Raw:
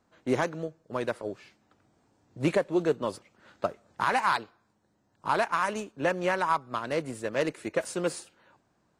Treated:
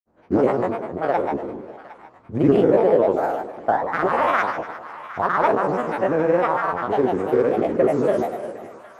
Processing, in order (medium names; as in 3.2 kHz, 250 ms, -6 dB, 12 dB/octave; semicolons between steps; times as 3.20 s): spectral sustain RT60 1.46 s; FFT filter 120 Hz 0 dB, 570 Hz +4 dB, 4.1 kHz -17 dB; granulator, pitch spread up and down by 7 st; two-band feedback delay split 860 Hz, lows 132 ms, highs 758 ms, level -15 dB; trim +4.5 dB